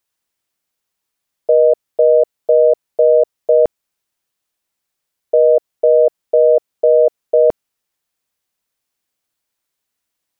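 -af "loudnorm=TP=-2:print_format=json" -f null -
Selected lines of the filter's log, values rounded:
"input_i" : "-13.7",
"input_tp" : "-3.7",
"input_lra" : "21.1",
"input_thresh" : "-24.3",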